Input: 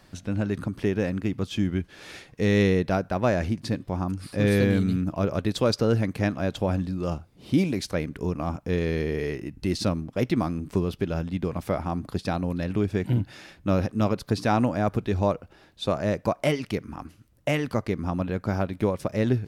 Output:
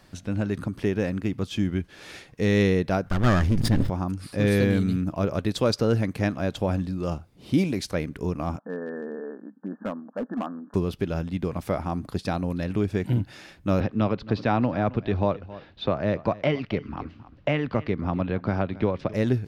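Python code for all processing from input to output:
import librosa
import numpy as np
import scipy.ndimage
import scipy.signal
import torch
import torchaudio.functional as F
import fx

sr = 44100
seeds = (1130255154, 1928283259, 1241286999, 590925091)

y = fx.chain(x, sr, fx.lower_of_two(delay_ms=0.6),
    fx.low_shelf(hz=110.0, db=12.0),
    fx.sustainer(db_per_s=25.0), at=(3.06, 3.9))
y = fx.chain(y, sr, fx.brickwall_bandpass(low_hz=190.0, high_hz=1800.0),
    fx.peak_eq(hz=360.0, db=-14.0, octaves=0.43),
    fx.overload_stage(gain_db=24.0), at=(8.59, 10.74))
y = fx.chain(y, sr, fx.lowpass(hz=4000.0, slope=24),
    fx.echo_single(ms=269, db=-19.5),
    fx.band_squash(depth_pct=40), at=(13.8, 19.14))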